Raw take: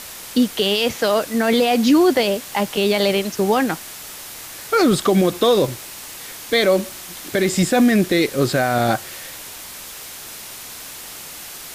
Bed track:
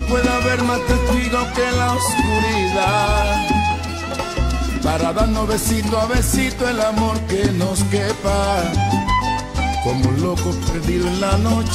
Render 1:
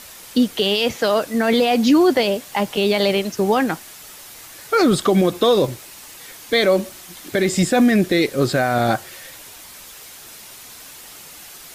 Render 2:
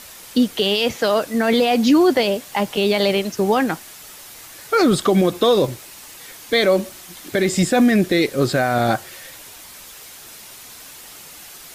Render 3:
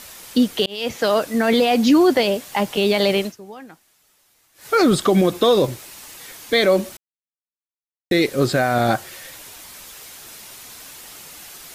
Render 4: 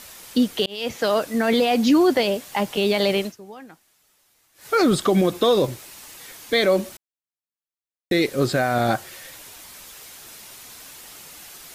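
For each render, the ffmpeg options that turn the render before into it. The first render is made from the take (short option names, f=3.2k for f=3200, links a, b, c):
-af "afftdn=nr=6:nf=-36"
-af anull
-filter_complex "[0:a]asplit=6[a][b][c][d][e][f];[a]atrim=end=0.66,asetpts=PTS-STARTPTS,afade=t=out:st=0.656:d=0.004:c=hsin[g];[b]atrim=start=0.66:end=3.4,asetpts=PTS-STARTPTS,afade=t=in:d=0.5:c=qsin,afade=t=out:st=2.59:d=0.15:c=qua:silence=0.0944061[h];[c]atrim=start=3.4:end=4.52,asetpts=PTS-STARTPTS,volume=-20.5dB[i];[d]atrim=start=4.52:end=6.97,asetpts=PTS-STARTPTS,afade=t=in:d=0.15:c=qua:silence=0.0944061,afade=t=out:st=2.446:d=0.004:c=hsin[j];[e]atrim=start=6.97:end=8.11,asetpts=PTS-STARTPTS,volume=0[k];[f]atrim=start=8.11,asetpts=PTS-STARTPTS,afade=t=in:d=0.004:c=hsin[l];[g][h][i][j][k][l]concat=n=6:v=0:a=1"
-af "volume=-2.5dB"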